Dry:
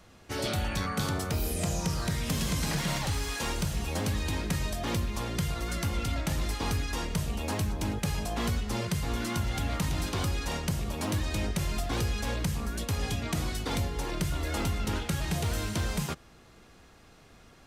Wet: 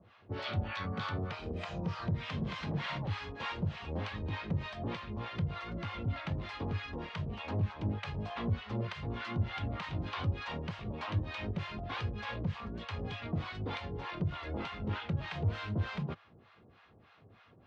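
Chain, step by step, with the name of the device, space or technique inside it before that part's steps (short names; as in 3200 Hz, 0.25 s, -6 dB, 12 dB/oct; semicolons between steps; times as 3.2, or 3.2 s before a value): guitar amplifier with harmonic tremolo (harmonic tremolo 3.3 Hz, depth 100%, crossover 700 Hz; soft clip -24.5 dBFS, distortion -21 dB; speaker cabinet 97–3500 Hz, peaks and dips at 100 Hz +9 dB, 290 Hz -3 dB, 1100 Hz +3 dB)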